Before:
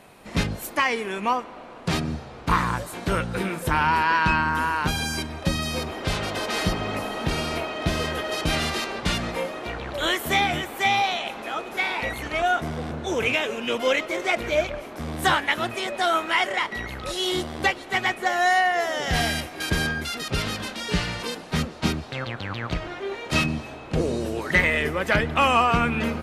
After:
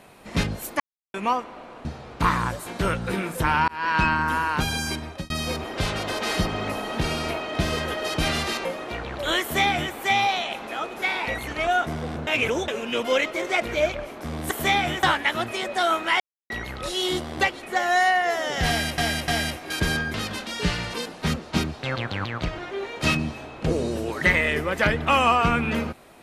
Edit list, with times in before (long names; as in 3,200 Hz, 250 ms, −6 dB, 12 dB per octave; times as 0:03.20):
0:00.80–0:01.14: silence
0:01.85–0:02.12: remove
0:03.95–0:04.25: fade in
0:05.30–0:05.57: fade out
0:08.92–0:09.40: remove
0:10.17–0:10.69: duplicate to 0:15.26
0:13.02–0:13.43: reverse
0:16.43–0:16.73: silence
0:17.86–0:18.13: remove
0:19.18–0:19.48: repeat, 3 plays
0:20.04–0:20.43: remove
0:22.13–0:22.55: clip gain +3 dB